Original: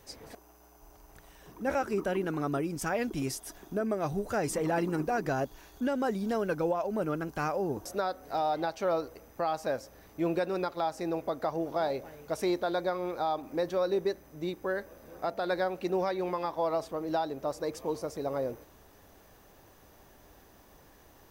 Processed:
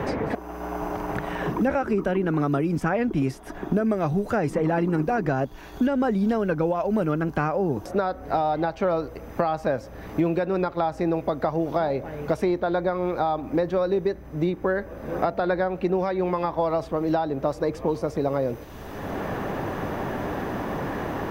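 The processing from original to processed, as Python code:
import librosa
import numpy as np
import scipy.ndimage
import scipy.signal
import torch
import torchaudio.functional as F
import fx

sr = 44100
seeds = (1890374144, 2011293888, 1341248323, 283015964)

y = fx.band_squash(x, sr, depth_pct=40, at=(1.85, 2.78))
y = fx.bass_treble(y, sr, bass_db=6, treble_db=-13)
y = fx.band_squash(y, sr, depth_pct=100)
y = y * 10.0 ** (5.5 / 20.0)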